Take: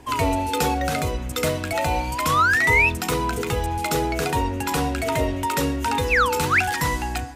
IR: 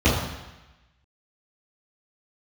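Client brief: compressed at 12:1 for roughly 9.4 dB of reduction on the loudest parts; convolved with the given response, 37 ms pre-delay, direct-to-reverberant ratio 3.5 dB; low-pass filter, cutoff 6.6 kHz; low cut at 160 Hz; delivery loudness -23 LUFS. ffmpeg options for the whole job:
-filter_complex "[0:a]highpass=160,lowpass=6600,acompressor=threshold=0.0631:ratio=12,asplit=2[s0][s1];[1:a]atrim=start_sample=2205,adelay=37[s2];[s1][s2]afir=irnorm=-1:irlink=0,volume=0.0708[s3];[s0][s3]amix=inputs=2:normalize=0,volume=1.19"

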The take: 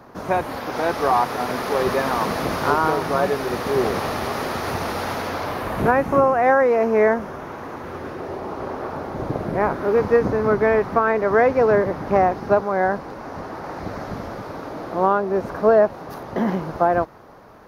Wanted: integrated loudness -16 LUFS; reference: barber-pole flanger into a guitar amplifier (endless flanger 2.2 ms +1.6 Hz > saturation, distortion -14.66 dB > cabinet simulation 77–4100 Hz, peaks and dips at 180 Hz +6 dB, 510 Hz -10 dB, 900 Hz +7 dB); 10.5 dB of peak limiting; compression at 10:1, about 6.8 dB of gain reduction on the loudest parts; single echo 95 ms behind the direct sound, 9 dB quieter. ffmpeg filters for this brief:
-filter_complex "[0:a]acompressor=threshold=0.126:ratio=10,alimiter=limit=0.119:level=0:latency=1,aecho=1:1:95:0.355,asplit=2[s0][s1];[s1]adelay=2.2,afreqshift=1.6[s2];[s0][s2]amix=inputs=2:normalize=1,asoftclip=threshold=0.0501,highpass=77,equalizer=f=180:t=q:w=4:g=6,equalizer=f=510:t=q:w=4:g=-10,equalizer=f=900:t=q:w=4:g=7,lowpass=f=4100:w=0.5412,lowpass=f=4100:w=1.3066,volume=7.08"

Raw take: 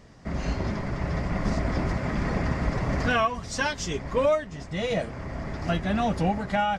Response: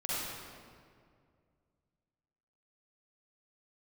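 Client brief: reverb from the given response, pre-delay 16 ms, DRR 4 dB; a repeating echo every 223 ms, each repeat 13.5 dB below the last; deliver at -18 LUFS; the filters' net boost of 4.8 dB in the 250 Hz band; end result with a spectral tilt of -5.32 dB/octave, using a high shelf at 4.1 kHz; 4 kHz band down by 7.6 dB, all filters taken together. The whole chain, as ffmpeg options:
-filter_complex "[0:a]equalizer=f=250:t=o:g=6.5,equalizer=f=4000:t=o:g=-6,highshelf=f=4100:g=-8.5,aecho=1:1:223|446:0.211|0.0444,asplit=2[s0][s1];[1:a]atrim=start_sample=2205,adelay=16[s2];[s1][s2]afir=irnorm=-1:irlink=0,volume=0.316[s3];[s0][s3]amix=inputs=2:normalize=0,volume=2.11"

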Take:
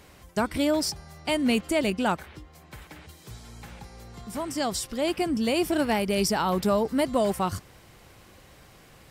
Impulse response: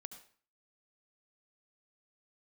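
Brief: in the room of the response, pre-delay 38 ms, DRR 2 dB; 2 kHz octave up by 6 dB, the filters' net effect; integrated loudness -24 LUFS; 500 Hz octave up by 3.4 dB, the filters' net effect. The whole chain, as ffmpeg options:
-filter_complex "[0:a]equalizer=f=500:t=o:g=4,equalizer=f=2000:t=o:g=7.5,asplit=2[s0][s1];[1:a]atrim=start_sample=2205,adelay=38[s2];[s1][s2]afir=irnorm=-1:irlink=0,volume=1.41[s3];[s0][s3]amix=inputs=2:normalize=0,volume=0.794"

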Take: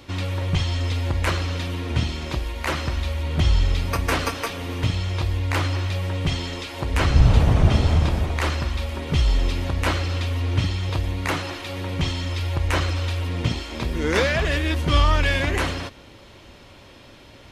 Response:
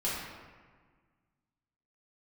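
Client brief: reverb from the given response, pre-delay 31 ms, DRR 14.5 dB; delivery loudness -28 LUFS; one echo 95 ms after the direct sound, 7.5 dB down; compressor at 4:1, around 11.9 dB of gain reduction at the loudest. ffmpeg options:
-filter_complex "[0:a]acompressor=threshold=0.0631:ratio=4,aecho=1:1:95:0.422,asplit=2[s0][s1];[1:a]atrim=start_sample=2205,adelay=31[s2];[s1][s2]afir=irnorm=-1:irlink=0,volume=0.0841[s3];[s0][s3]amix=inputs=2:normalize=0,volume=0.944"

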